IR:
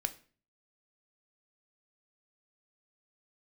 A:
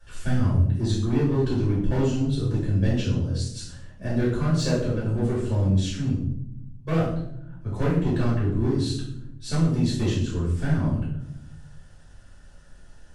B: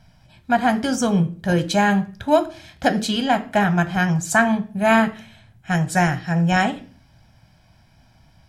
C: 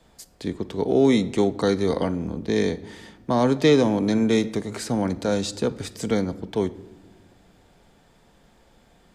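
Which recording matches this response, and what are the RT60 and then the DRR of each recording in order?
B; 0.75 s, 0.40 s, not exponential; -9.5, 8.5, 12.0 dB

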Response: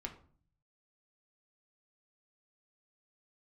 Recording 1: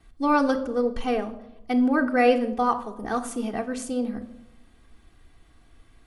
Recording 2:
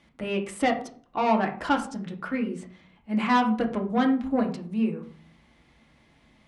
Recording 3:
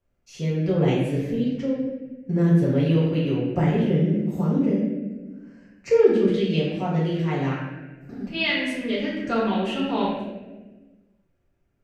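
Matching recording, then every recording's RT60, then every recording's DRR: 2; not exponential, 0.45 s, 1.3 s; -7.0, 2.0, -9.0 dB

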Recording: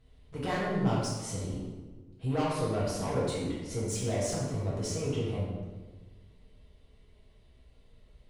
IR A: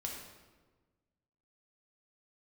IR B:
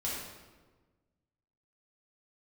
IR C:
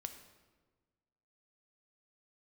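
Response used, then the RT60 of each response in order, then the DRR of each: B; 1.4, 1.4, 1.4 s; -1.0, -7.0, 7.0 dB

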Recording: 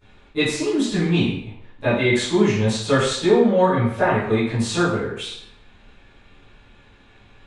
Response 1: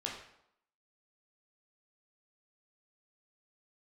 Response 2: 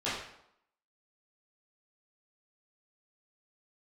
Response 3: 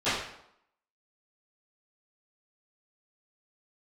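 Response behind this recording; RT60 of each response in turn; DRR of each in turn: 3; 0.75, 0.75, 0.75 s; -2.5, -12.0, -19.5 dB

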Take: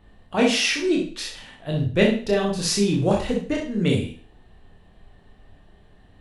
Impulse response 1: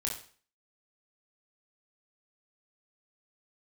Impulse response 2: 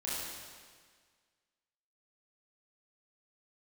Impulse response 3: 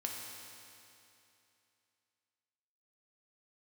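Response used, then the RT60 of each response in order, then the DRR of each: 1; 0.45, 1.7, 2.8 s; -1.5, -9.0, -1.0 dB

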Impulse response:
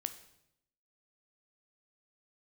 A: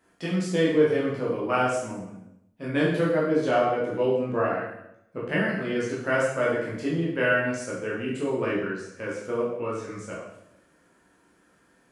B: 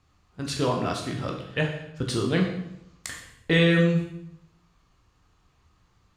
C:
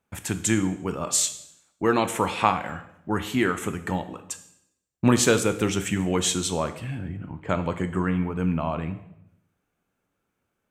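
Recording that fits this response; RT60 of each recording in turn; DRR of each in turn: C; 0.80, 0.80, 0.80 s; -6.5, 0.5, 9.5 dB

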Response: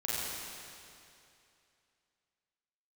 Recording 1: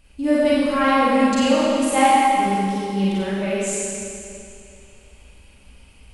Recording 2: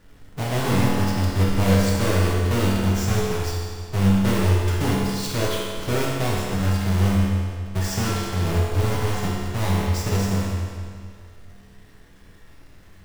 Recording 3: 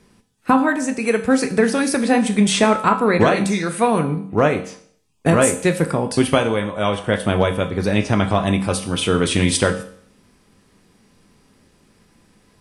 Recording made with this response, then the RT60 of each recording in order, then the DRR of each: 1; 2.6, 2.0, 0.60 s; -9.0, -5.5, 8.0 dB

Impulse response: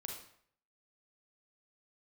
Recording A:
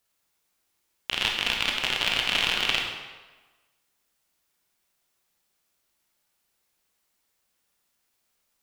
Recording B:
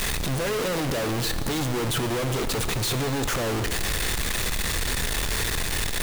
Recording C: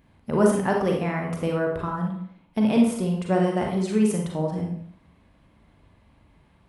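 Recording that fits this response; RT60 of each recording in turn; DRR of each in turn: C; 1.3, 2.3, 0.60 s; 0.0, 9.0, 0.5 dB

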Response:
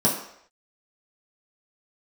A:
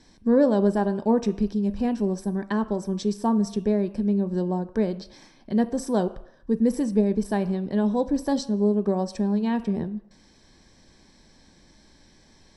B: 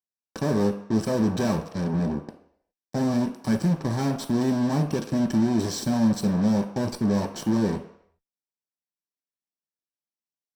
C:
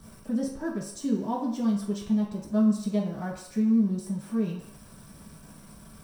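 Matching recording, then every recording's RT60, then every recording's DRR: C; 0.70, 0.70, 0.70 s; 10.0, 3.0, -5.5 dB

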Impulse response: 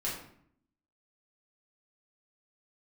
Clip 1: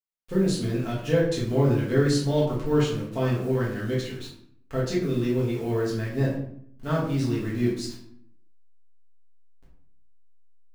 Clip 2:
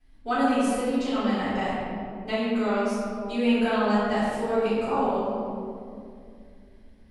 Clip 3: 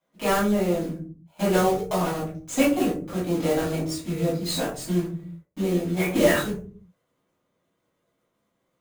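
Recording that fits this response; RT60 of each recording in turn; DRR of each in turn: 1; 0.65, 2.4, 0.45 s; -7.0, -18.0, -10.0 dB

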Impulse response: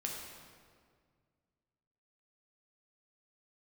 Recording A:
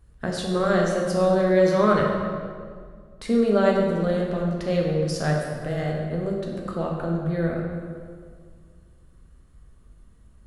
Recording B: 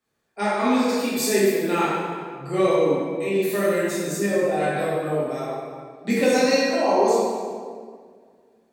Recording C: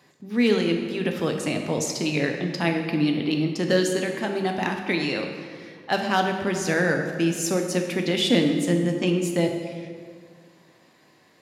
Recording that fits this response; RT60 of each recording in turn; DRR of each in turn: A; 1.9, 1.9, 1.9 s; -1.5, -10.0, 3.0 dB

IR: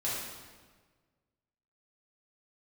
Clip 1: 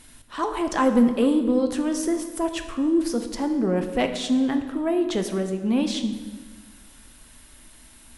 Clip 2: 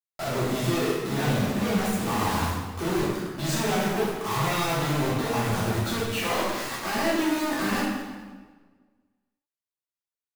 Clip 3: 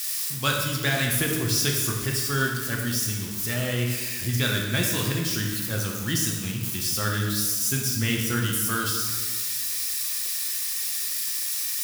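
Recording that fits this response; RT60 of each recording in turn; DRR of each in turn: 2; 1.5, 1.5, 1.5 s; 6.0, -8.5, -1.0 dB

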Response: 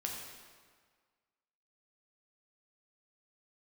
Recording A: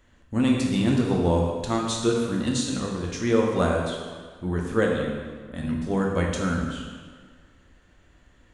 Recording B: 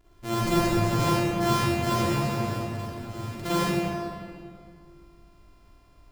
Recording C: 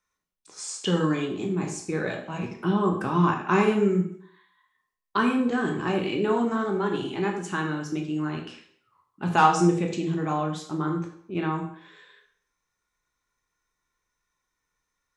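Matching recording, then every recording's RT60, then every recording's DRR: A; 1.7, 2.2, 0.60 s; -1.0, -9.5, 1.5 dB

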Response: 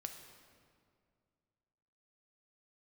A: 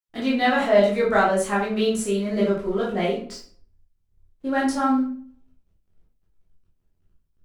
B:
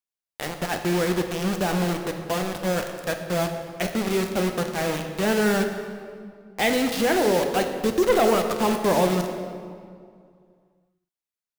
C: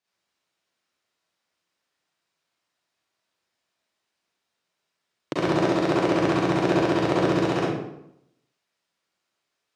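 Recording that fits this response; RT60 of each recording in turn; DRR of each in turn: B; 0.50, 2.2, 0.80 s; -6.0, 5.0, -8.0 dB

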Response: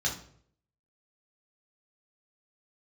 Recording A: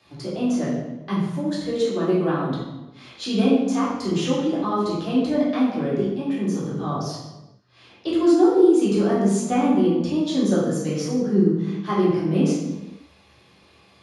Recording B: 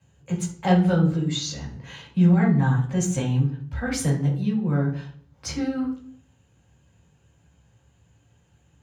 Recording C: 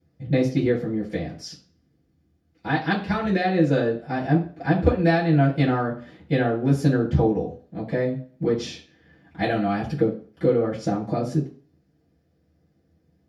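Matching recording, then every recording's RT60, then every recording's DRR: B; 1.0, 0.60, 0.40 s; -8.5, -3.0, -11.0 dB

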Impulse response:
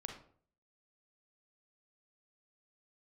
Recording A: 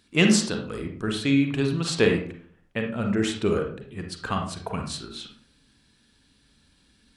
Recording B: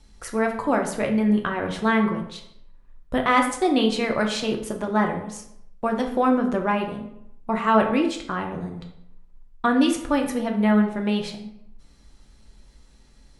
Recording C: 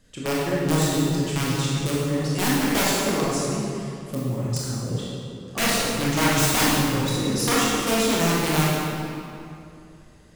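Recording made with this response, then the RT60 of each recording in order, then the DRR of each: A; 0.55, 0.80, 2.6 s; 3.0, 2.0, -7.0 dB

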